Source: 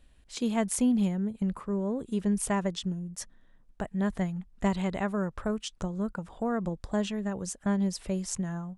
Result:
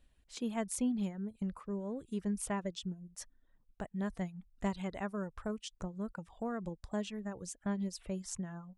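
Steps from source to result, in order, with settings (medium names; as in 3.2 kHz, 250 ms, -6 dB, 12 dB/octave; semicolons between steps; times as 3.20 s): reverb removal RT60 0.59 s; trim -7.5 dB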